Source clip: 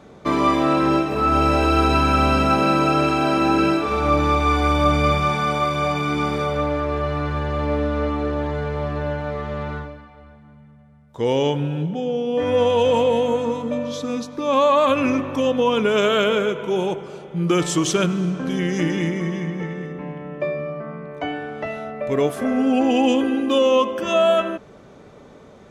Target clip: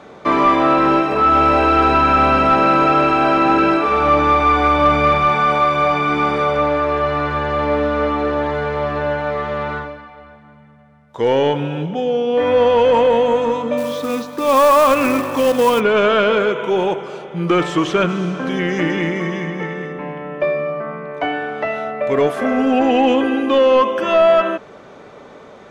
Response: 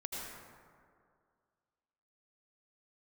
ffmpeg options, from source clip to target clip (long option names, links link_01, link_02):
-filter_complex "[0:a]asplit=2[link_01][link_02];[link_02]highpass=frequency=720:poles=1,volume=14dB,asoftclip=type=tanh:threshold=-5dB[link_03];[link_01][link_03]amix=inputs=2:normalize=0,lowpass=frequency=2700:poles=1,volume=-6dB,acrossover=split=3000[link_04][link_05];[link_05]acompressor=threshold=-40dB:ratio=4:attack=1:release=60[link_06];[link_04][link_06]amix=inputs=2:normalize=0,asplit=3[link_07][link_08][link_09];[link_07]afade=type=out:start_time=13.77:duration=0.02[link_10];[link_08]acrusher=bits=4:mode=log:mix=0:aa=0.000001,afade=type=in:start_time=13.77:duration=0.02,afade=type=out:start_time=15.79:duration=0.02[link_11];[link_09]afade=type=in:start_time=15.79:duration=0.02[link_12];[link_10][link_11][link_12]amix=inputs=3:normalize=0,volume=1.5dB"